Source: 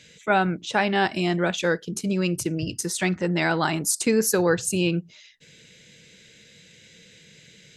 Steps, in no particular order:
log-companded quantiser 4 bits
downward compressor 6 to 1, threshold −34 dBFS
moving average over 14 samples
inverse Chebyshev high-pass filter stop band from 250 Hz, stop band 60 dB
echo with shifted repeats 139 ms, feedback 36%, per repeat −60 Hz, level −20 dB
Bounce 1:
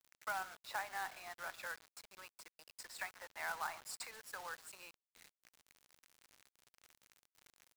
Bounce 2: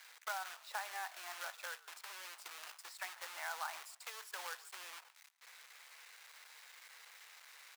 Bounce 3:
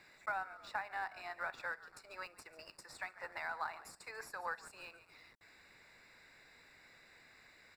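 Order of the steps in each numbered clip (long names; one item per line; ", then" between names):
moving average, then downward compressor, then echo with shifted repeats, then inverse Chebyshev high-pass filter, then log-companded quantiser
downward compressor, then moving average, then log-companded quantiser, then echo with shifted repeats, then inverse Chebyshev high-pass filter
echo with shifted repeats, then inverse Chebyshev high-pass filter, then log-companded quantiser, then downward compressor, then moving average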